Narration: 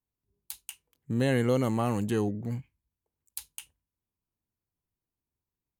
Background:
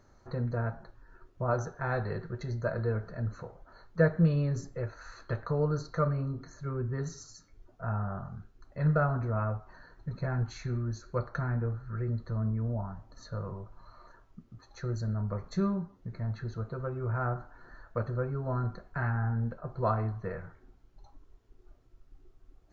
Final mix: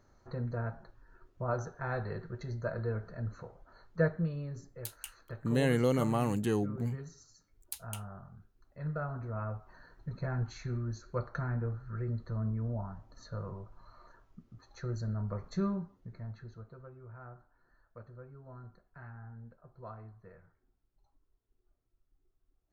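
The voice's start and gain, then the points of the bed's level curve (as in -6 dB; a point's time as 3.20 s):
4.35 s, -2.5 dB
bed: 4.06 s -4 dB
4.31 s -10.5 dB
8.94 s -10.5 dB
9.83 s -3 dB
15.75 s -3 dB
17.08 s -18 dB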